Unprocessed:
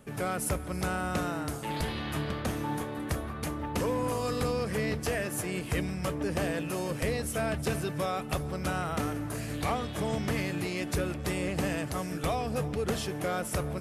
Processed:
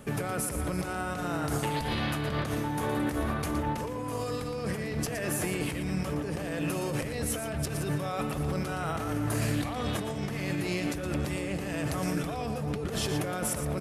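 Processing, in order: compressor with a negative ratio -36 dBFS, ratio -1; echo from a far wall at 20 m, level -7 dB; trim +3.5 dB

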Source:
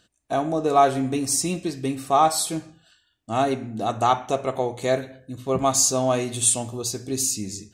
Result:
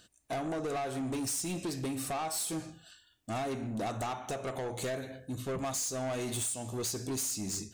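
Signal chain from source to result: treble shelf 6.4 kHz +8 dB; compression 12:1, threshold -25 dBFS, peak gain reduction 16 dB; saturation -31 dBFS, distortion -8 dB

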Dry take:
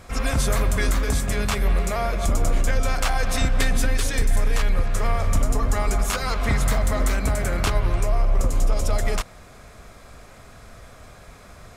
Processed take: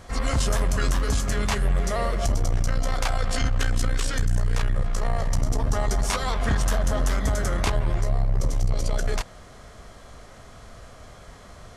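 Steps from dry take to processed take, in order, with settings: formant shift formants -3 st; transformer saturation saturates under 84 Hz

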